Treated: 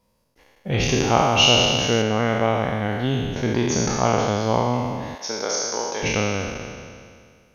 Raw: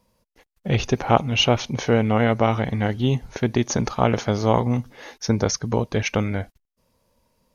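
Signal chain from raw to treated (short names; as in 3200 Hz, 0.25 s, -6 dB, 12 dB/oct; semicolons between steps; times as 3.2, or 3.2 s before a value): spectral trails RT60 2.10 s; 0.8–2.02 high shelf 4200 Hz +8.5 dB; 5.15–6.03 HPF 510 Hz 12 dB/oct; gain -4 dB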